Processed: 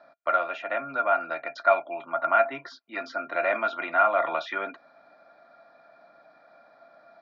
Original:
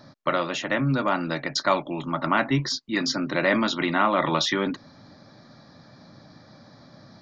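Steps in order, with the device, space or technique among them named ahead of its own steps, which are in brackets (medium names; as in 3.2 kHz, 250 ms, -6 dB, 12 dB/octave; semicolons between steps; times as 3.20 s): tin-can telephone (band-pass 560–2100 Hz; small resonant body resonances 680/1400/2400 Hz, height 18 dB, ringing for 70 ms); trim -5.5 dB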